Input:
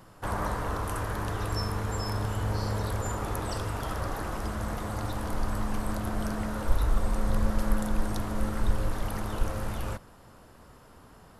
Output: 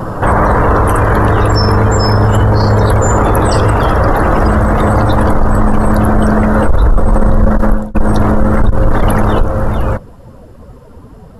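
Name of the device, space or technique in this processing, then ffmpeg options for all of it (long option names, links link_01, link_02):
mastering chain: -af "equalizer=frequency=500:width_type=o:width=0.57:gain=2.5,highshelf=frequency=2100:gain=-2.5,acompressor=threshold=-32dB:ratio=1.5,asoftclip=type=tanh:threshold=-21dB,asoftclip=type=hard:threshold=-24.5dB,alimiter=level_in=35.5dB:limit=-1dB:release=50:level=0:latency=1,afftdn=noise_reduction=15:noise_floor=-22,volume=-1.5dB"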